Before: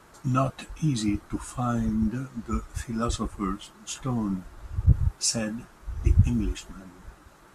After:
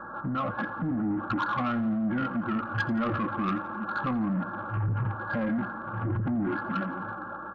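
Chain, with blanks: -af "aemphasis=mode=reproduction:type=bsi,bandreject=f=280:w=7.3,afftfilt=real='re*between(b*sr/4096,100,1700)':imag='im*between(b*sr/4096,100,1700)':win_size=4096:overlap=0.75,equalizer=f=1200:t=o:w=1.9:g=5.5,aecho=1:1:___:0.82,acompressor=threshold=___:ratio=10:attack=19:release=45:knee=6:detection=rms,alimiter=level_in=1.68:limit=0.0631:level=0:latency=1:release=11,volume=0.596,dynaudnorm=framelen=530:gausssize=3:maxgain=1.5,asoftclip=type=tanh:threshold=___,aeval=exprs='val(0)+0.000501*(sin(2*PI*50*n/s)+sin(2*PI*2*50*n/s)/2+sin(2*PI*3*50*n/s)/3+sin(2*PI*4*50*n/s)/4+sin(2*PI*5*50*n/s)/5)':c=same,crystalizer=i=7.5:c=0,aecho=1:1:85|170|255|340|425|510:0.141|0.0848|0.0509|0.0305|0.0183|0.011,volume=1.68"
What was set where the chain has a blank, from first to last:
3.6, 0.0316, 0.0398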